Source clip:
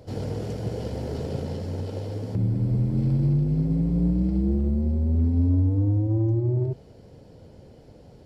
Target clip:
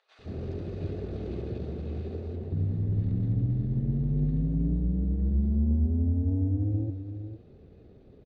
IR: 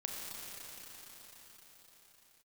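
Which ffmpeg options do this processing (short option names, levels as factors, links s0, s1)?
-filter_complex "[0:a]equalizer=f=150:w=4.3:g=-2.5,adynamicsmooth=sensitivity=2:basefreq=3900,acrossover=split=1200[s0][s1];[s0]adelay=170[s2];[s2][s1]amix=inputs=2:normalize=0,asetrate=37084,aresample=44100,atempo=1.18921,asplit=2[s3][s4];[s4]aecho=0:1:460:0.335[s5];[s3][s5]amix=inputs=2:normalize=0,volume=0.631"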